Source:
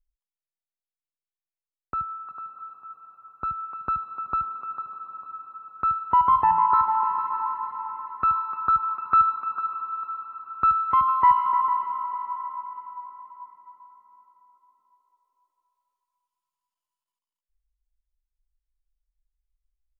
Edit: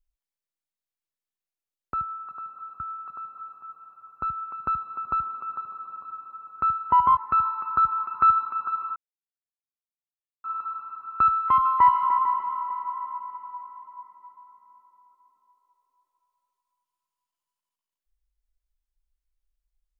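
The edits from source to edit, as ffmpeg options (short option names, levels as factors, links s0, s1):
-filter_complex "[0:a]asplit=4[s0][s1][s2][s3];[s0]atrim=end=2.802[s4];[s1]atrim=start=2.008:end=6.382[s5];[s2]atrim=start=8.078:end=9.87,asetpts=PTS-STARTPTS,afade=t=out:st=1.788:d=0.004:c=hsin,apad=pad_dur=1.48[s6];[s3]atrim=start=9.87,asetpts=PTS-STARTPTS,afade=t=in:d=0.004:c=hsin[s7];[s4][s5]acrossfade=d=0.004:c1=hsin:c2=hsin[s8];[s6][s7]concat=n=2:v=0:a=1[s9];[s8][s9]acrossfade=d=0.004:c1=hsin:c2=hsin"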